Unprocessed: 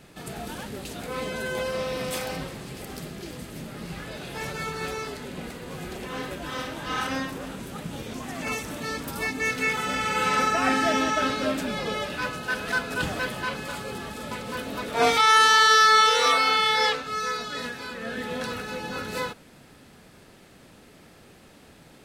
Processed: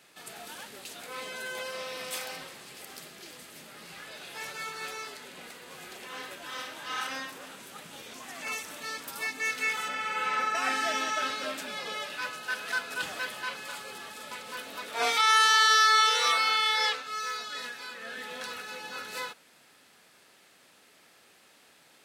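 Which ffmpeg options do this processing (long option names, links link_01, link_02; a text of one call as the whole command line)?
ffmpeg -i in.wav -filter_complex "[0:a]asettb=1/sr,asplit=3[link_01][link_02][link_03];[link_01]atrim=end=9.884[link_04];[link_02]atrim=start=9.88:end=10.55,asetpts=PTS-STARTPTS,afade=type=in:duration=0.004:curve=qsin,afade=type=out:start_time=0.666:duration=0.004:curve=qsin,acrossover=split=3000[link_05][link_06];[link_06]acompressor=threshold=-44dB:ratio=4:attack=1:release=60[link_07];[link_05][link_07]amix=inputs=2:normalize=0[link_08];[link_03]atrim=start=10.546[link_09];[link_04][link_08]acrossfade=duration=0.004:curve1=hsin:curve2=qsin[link_10];[link_10][link_09]acrossfade=duration=0.004:curve1=qsin:curve2=hsin,asettb=1/sr,asplit=3[link_11][link_12][link_13];[link_11]atrim=end=17.064[link_14];[link_12]atrim=start=17.06:end=18.59,asetpts=PTS-STARTPTS,afade=type=in:duration=0.004:curve=qsin,afade=type=out:start_time=1.526:duration=0.004:curve=qsin,asoftclip=type=hard:threshold=-24dB[link_15];[link_13]atrim=start=18.586[link_16];[link_14][link_15]acrossfade=duration=0.004:curve1=hsin:curve2=qsin[link_17];[link_17][link_16]acrossfade=duration=0.004:curve1=qsin:curve2=hsin,highpass=frequency=1300:poles=1,volume=-2dB" out.wav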